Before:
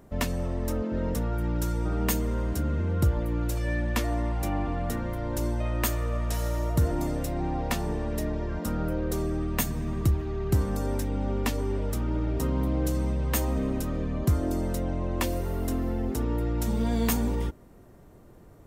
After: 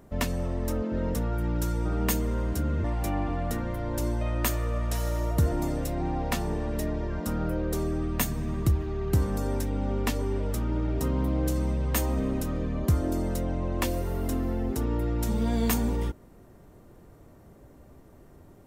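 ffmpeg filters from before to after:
-filter_complex "[0:a]asplit=2[a][b];[a]atrim=end=2.842[c];[b]atrim=start=4.228[d];[c][d]acrossfade=d=0.004:c1=hsin:c2=hsin"

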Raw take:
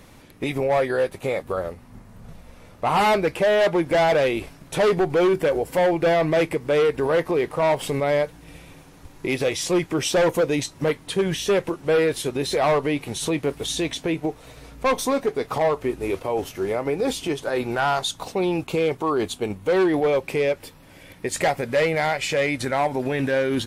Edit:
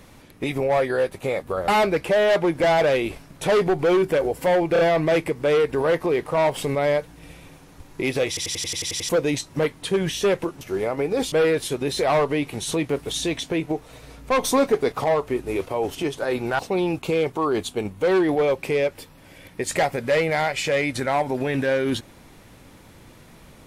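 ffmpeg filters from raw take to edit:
-filter_complex "[0:a]asplit=19[a][b][c][d][e][f][g][h][i][j][k][l][m][n][o][p][q][r][s];[a]atrim=end=1.682[t];[b]atrim=start=2.988:end=6.072[u];[c]atrim=start=6.038:end=6.072[v];[d]atrim=start=6.038:end=9.622[w];[e]atrim=start=9.528:end=9.622[x];[f]atrim=start=9.528:end=9.622[y];[g]atrim=start=9.528:end=9.622[z];[h]atrim=start=9.528:end=9.622[aa];[i]atrim=start=9.528:end=9.622[ab];[j]atrim=start=9.528:end=9.622[ac];[k]atrim=start=9.528:end=9.622[ad];[l]atrim=start=9.528:end=9.622[ae];[m]atrim=start=10.338:end=11.862[af];[n]atrim=start=16.488:end=17.202[ag];[o]atrim=start=11.858:end=14.972[ah];[p]atrim=start=14.968:end=15.462,asetpts=PTS-STARTPTS,volume=3.5dB[ai];[q]atrim=start=15.458:end=16.492[aj];[r]atrim=start=17.198:end=17.842[ak];[s]atrim=start=18.238[al];[t][u]acrossfade=d=0.004:c1=hsin:c2=hsin[am];[am][v]acrossfade=d=0.004:c1=hsin:c2=hsin[an];[an][w]acrossfade=d=0.004:c1=hsin:c2=hsin[ao];[ao][x]acrossfade=d=0.004:c1=hsin:c2=hsin[ap];[ap][y]acrossfade=d=0.004:c1=hsin:c2=hsin[aq];[aq][z]acrossfade=d=0.004:c1=hsin:c2=hsin[ar];[ar][aa]acrossfade=d=0.004:c1=hsin:c2=hsin[as];[as][ab]acrossfade=d=0.004:c1=hsin:c2=hsin[at];[at][ac]acrossfade=d=0.004:c1=hsin:c2=hsin[au];[au][ad]acrossfade=d=0.004:c1=hsin:c2=hsin[av];[av][ae]acrossfade=d=0.004:c1=hsin:c2=hsin[aw];[aw][af]acrossfade=d=0.004:c1=hsin:c2=hsin[ax];[ax][ag]acrossfade=d=0.004:c1=hsin:c2=hsin[ay];[ay][ah]acrossfade=d=0.004:c1=hsin:c2=hsin[az];[az][ai]acrossfade=d=0.004:c1=hsin:c2=hsin[ba];[ba][aj]acrossfade=d=0.004:c1=hsin:c2=hsin[bb];[bb][ak]acrossfade=d=0.004:c1=hsin:c2=hsin[bc];[bc][al]acrossfade=d=0.004:c1=hsin:c2=hsin"

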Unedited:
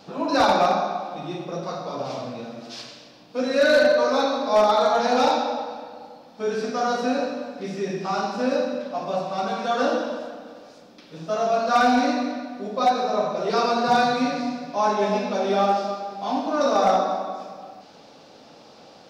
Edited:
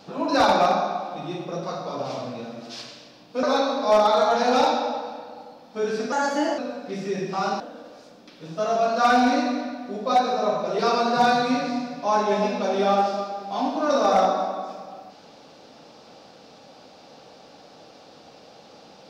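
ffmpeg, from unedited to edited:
-filter_complex "[0:a]asplit=5[a][b][c][d][e];[a]atrim=end=3.432[f];[b]atrim=start=4.068:end=6.764[g];[c]atrim=start=6.76:end=7.3,asetpts=PTS-STARTPTS,asetrate=51597,aresample=44100[h];[d]atrim=start=7.296:end=8.322[i];[e]atrim=start=10.308[j];[f][g]acrossfade=d=0.004:c1=hsin:c2=hsin[k];[k][h]acrossfade=d=0.004:c1=hsin:c2=hsin[l];[l][i]acrossfade=d=0.004:c1=hsin:c2=hsin[m];[m][j]acrossfade=d=0.004:c1=hsin:c2=hsin"

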